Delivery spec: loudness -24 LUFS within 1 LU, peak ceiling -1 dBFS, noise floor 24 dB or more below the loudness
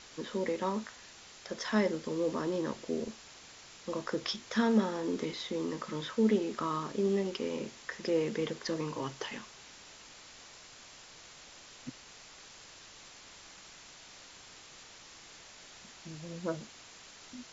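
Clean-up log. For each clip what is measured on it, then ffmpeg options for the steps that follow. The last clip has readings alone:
noise floor -54 dBFS; noise floor target -58 dBFS; loudness -34.0 LUFS; peak level -14.5 dBFS; loudness target -24.0 LUFS
-> -af "afftdn=nr=6:nf=-54"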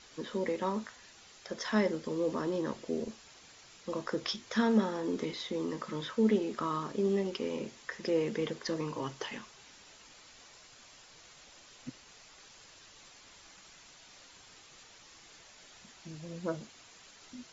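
noise floor -57 dBFS; noise floor target -58 dBFS
-> -af "afftdn=nr=6:nf=-57"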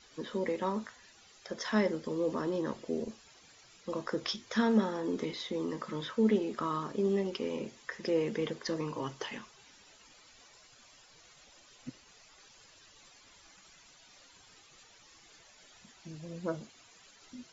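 noise floor -60 dBFS; loudness -34.0 LUFS; peak level -14.5 dBFS; loudness target -24.0 LUFS
-> -af "volume=3.16"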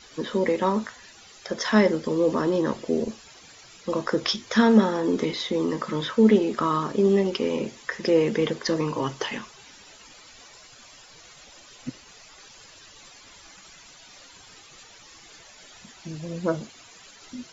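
loudness -24.0 LUFS; peak level -4.5 dBFS; noise floor -50 dBFS

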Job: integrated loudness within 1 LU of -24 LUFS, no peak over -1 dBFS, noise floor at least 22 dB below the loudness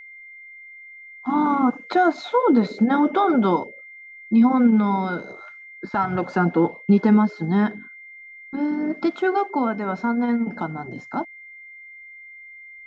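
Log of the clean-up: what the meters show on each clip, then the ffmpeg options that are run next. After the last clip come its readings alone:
steady tone 2.1 kHz; tone level -40 dBFS; loudness -21.0 LUFS; peak level -7.0 dBFS; loudness target -24.0 LUFS
-> -af "bandreject=f=2100:w=30"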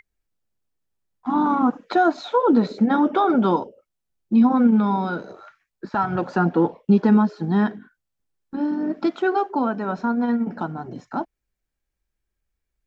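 steady tone not found; loudness -21.0 LUFS; peak level -7.0 dBFS; loudness target -24.0 LUFS
-> -af "volume=0.708"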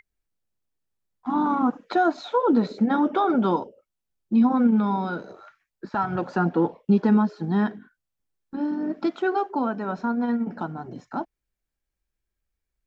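loudness -24.0 LUFS; peak level -10.0 dBFS; noise floor -84 dBFS

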